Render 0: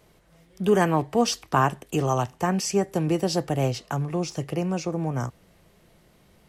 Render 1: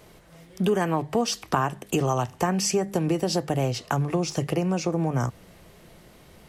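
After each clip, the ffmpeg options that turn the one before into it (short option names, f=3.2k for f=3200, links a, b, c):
-af "bandreject=f=50:t=h:w=6,bandreject=f=100:t=h:w=6,bandreject=f=150:t=h:w=6,bandreject=f=200:t=h:w=6,acompressor=threshold=-29dB:ratio=4,volume=7.5dB"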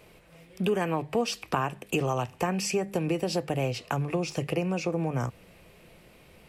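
-af "equalizer=f=500:t=o:w=0.33:g=4,equalizer=f=2.5k:t=o:w=0.33:g=10,equalizer=f=6.3k:t=o:w=0.33:g=-4,volume=-4.5dB"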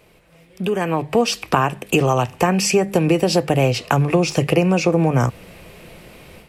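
-af "dynaudnorm=f=580:g=3:m=11.5dB,volume=1.5dB"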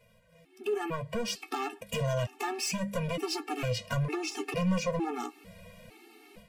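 -af "asoftclip=type=hard:threshold=-16dB,flanger=delay=8.7:depth=2:regen=45:speed=0.99:shape=triangular,afftfilt=real='re*gt(sin(2*PI*1.1*pts/sr)*(1-2*mod(floor(b*sr/1024/230),2)),0)':imag='im*gt(sin(2*PI*1.1*pts/sr)*(1-2*mod(floor(b*sr/1024/230),2)),0)':win_size=1024:overlap=0.75,volume=-4dB"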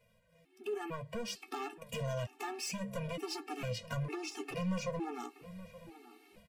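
-filter_complex "[0:a]asplit=2[a][b];[b]adelay=874.6,volume=-15dB,highshelf=f=4k:g=-19.7[c];[a][c]amix=inputs=2:normalize=0,volume=-7dB"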